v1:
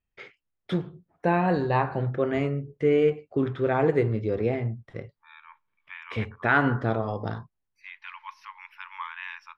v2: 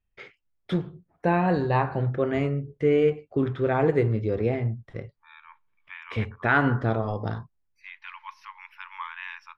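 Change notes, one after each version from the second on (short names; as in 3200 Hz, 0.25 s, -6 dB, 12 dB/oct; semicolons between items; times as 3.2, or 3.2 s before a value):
master: add low shelf 75 Hz +8.5 dB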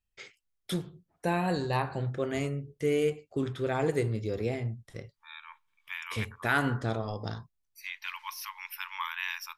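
first voice -6.5 dB; master: remove LPF 2100 Hz 12 dB/oct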